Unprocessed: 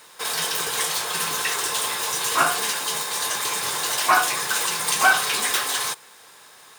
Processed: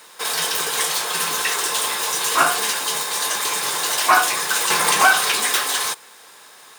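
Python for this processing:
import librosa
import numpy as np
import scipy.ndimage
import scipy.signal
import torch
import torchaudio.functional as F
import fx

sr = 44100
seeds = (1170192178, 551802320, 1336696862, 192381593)

y = scipy.signal.sosfilt(scipy.signal.butter(2, 170.0, 'highpass', fs=sr, output='sos'), x)
y = fx.band_squash(y, sr, depth_pct=70, at=(4.7, 5.32))
y = F.gain(torch.from_numpy(y), 3.0).numpy()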